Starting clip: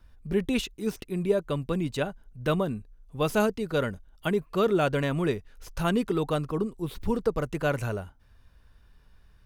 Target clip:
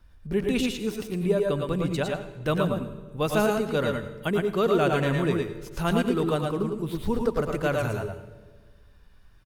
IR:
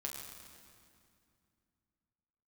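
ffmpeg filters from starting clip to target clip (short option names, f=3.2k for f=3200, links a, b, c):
-filter_complex "[0:a]aecho=1:1:102|114:0.376|0.631,asplit=2[a][b];[1:a]atrim=start_sample=2205,asetrate=83790,aresample=44100,adelay=90[c];[b][c]afir=irnorm=-1:irlink=0,volume=-5dB[d];[a][d]amix=inputs=2:normalize=0"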